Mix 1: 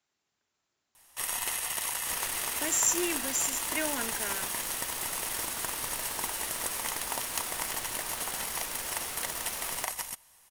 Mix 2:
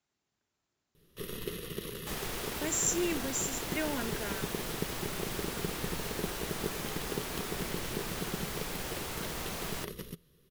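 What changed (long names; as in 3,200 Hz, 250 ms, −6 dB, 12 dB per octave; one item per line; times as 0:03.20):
speech −4.0 dB
first sound: add drawn EQ curve 110 Hz 0 dB, 170 Hz +12 dB, 270 Hz +1 dB, 420 Hz +13 dB, 820 Hz −28 dB, 1,200 Hz −9 dB, 2,200 Hz −13 dB, 3,600 Hz −4 dB, 8,300 Hz −23 dB, 12,000 Hz −11 dB
master: add low-shelf EQ 400 Hz +9 dB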